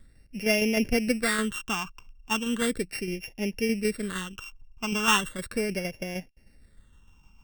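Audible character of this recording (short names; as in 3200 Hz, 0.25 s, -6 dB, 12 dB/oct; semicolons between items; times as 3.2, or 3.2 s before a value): a buzz of ramps at a fixed pitch in blocks of 16 samples; tremolo saw down 6.5 Hz, depth 45%; phasing stages 8, 0.37 Hz, lowest notch 540–1200 Hz; Vorbis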